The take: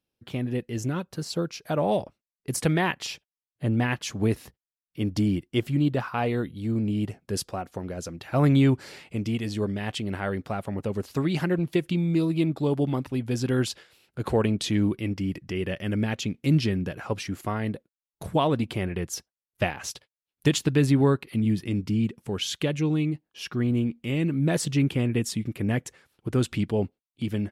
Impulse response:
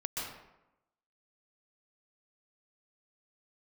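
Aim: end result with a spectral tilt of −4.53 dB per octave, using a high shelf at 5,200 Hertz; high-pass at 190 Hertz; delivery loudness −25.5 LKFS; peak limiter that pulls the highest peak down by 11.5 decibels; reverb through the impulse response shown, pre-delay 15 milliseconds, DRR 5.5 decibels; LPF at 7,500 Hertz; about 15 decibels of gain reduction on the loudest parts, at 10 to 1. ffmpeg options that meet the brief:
-filter_complex "[0:a]highpass=190,lowpass=7500,highshelf=frequency=5200:gain=8,acompressor=threshold=-33dB:ratio=10,alimiter=level_in=3.5dB:limit=-24dB:level=0:latency=1,volume=-3.5dB,asplit=2[link_01][link_02];[1:a]atrim=start_sample=2205,adelay=15[link_03];[link_02][link_03]afir=irnorm=-1:irlink=0,volume=-8.5dB[link_04];[link_01][link_04]amix=inputs=2:normalize=0,volume=13dB"

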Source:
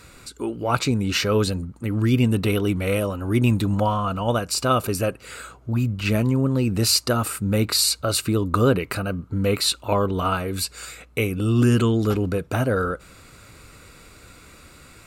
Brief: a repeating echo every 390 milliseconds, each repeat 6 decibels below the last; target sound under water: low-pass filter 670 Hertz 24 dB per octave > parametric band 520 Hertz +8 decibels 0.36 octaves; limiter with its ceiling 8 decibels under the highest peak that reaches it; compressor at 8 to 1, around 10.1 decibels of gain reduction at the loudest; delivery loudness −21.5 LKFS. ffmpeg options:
ffmpeg -i in.wav -af "acompressor=threshold=-24dB:ratio=8,alimiter=limit=-19.5dB:level=0:latency=1,lowpass=frequency=670:width=0.5412,lowpass=frequency=670:width=1.3066,equalizer=frequency=520:width_type=o:width=0.36:gain=8,aecho=1:1:390|780|1170|1560|1950|2340:0.501|0.251|0.125|0.0626|0.0313|0.0157,volume=7dB" out.wav

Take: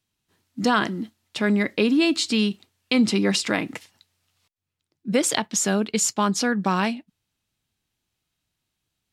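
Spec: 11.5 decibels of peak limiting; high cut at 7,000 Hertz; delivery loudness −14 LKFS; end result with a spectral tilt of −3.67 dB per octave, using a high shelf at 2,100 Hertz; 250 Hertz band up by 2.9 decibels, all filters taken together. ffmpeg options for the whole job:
ffmpeg -i in.wav -af "lowpass=7000,equalizer=frequency=250:width_type=o:gain=3.5,highshelf=frequency=2100:gain=3,volume=9.5dB,alimiter=limit=-3.5dB:level=0:latency=1" out.wav

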